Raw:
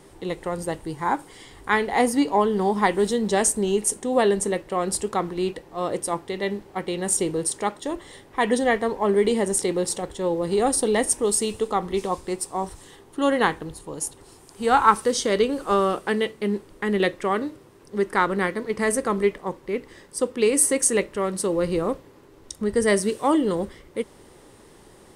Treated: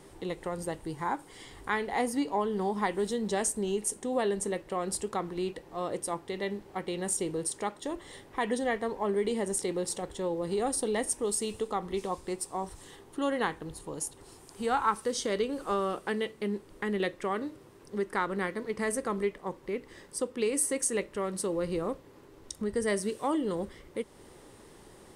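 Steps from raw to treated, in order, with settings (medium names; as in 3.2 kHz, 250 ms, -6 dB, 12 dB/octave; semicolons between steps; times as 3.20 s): compression 1.5:1, threshold -34 dBFS, peak gain reduction 9 dB; trim -3 dB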